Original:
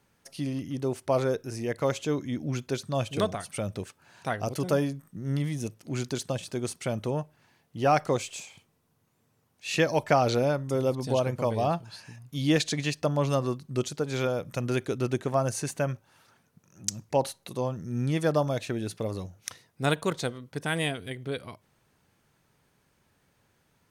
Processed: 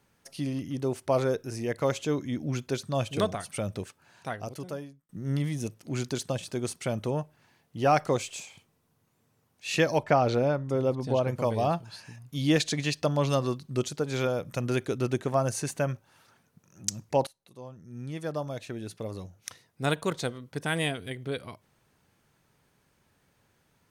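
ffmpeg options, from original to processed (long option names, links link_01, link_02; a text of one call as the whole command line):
ffmpeg -i in.wav -filter_complex "[0:a]asettb=1/sr,asplit=3[link_01][link_02][link_03];[link_01]atrim=end=9.984[link_04];[link_02]atrim=start=9.98:end=11.28,asetpts=PTS-STARTPTS,afade=type=in:duration=0.004:curve=qsin,afade=type=out:start_time=1.296:duration=0.004:curve=qsin,lowpass=frequency=2500:poles=1[link_05];[link_03]atrim=start=11.276[link_06];[link_04][link_05]acrossfade=duration=0.004:curve1=hsin:curve2=qsin[link_07];[link_07][link_06]acrossfade=duration=0.004:curve1=qsin:curve2=hsin,asettb=1/sr,asplit=3[link_08][link_09][link_10];[link_08]atrim=end=12.904[link_11];[link_09]atrim=start=12.9:end=13.75,asetpts=PTS-STARTPTS,afade=type=in:duration=0.004:curve=qsin,afade=type=out:start_time=0.846:duration=0.004:curve=qsin,equalizer=frequency=3900:width_type=o:width=1.1:gain=5[link_12];[link_10]atrim=start=13.746[link_13];[link_11][link_12]acrossfade=duration=0.004:curve1=hsin:curve2=qsin[link_14];[link_14][link_13]acrossfade=duration=0.004:curve1=qsin:curve2=hsin,asplit=3[link_15][link_16][link_17];[link_15]atrim=end=5.09,asetpts=PTS-STARTPTS,afade=type=out:start_time=3.77:duration=1.32[link_18];[link_16]atrim=start=5.09:end=17.27,asetpts=PTS-STARTPTS,afade=type=in:duration=0.004:curve=hsin,afade=type=out:start_time=12.176:duration=0.004:curve=hsin:silence=0.0944061[link_19];[link_17]atrim=start=17.27,asetpts=PTS-STARTPTS,afade=type=in:duration=3.23:silence=0.0944061[link_20];[link_18][link_19][link_20]concat=n=3:v=0:a=1" out.wav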